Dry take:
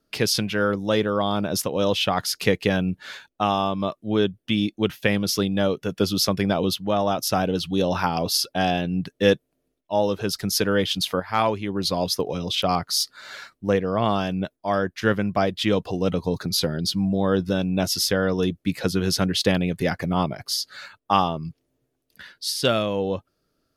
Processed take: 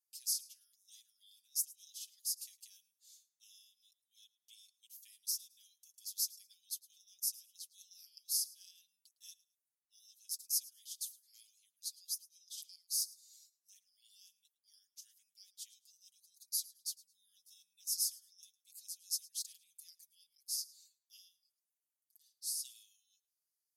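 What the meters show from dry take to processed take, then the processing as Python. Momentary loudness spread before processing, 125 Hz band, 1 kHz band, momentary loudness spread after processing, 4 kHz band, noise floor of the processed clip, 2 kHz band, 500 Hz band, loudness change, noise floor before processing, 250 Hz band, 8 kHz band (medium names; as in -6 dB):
5 LU, under -40 dB, under -40 dB, 22 LU, -19.0 dB, under -85 dBFS, under -40 dB, under -40 dB, -16.0 dB, -76 dBFS, under -40 dB, -7.5 dB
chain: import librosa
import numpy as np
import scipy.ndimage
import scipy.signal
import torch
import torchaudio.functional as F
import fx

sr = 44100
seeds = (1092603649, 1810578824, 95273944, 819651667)

y = scipy.signal.sosfilt(scipy.signal.cheby2(4, 80, 1200.0, 'highpass', fs=sr, output='sos'), x)
y = y + 0.9 * np.pad(y, (int(6.2 * sr / 1000.0), 0))[:len(y)]
y = fx.echo_feedback(y, sr, ms=108, feedback_pct=23, wet_db=-21)
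y = y * 10.0 ** (-7.5 / 20.0)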